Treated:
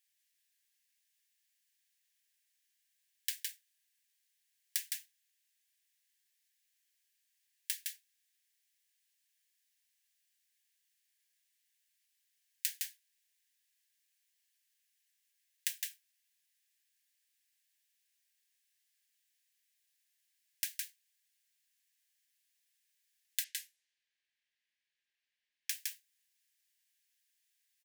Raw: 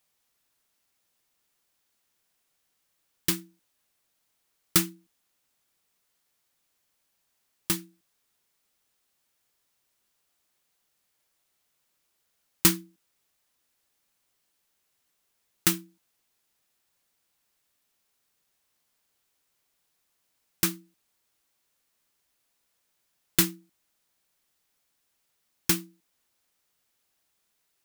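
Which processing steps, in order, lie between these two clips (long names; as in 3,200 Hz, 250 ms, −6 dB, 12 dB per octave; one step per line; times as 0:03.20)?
single-tap delay 161 ms −6.5 dB
downward compressor 6 to 1, threshold −27 dBFS, peak gain reduction 12.5 dB
Chebyshev high-pass filter 1,600 Hz, order 8
0:23.44–0:25.70: low-pass that shuts in the quiet parts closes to 2,900 Hz, open at −38.5 dBFS
level −4 dB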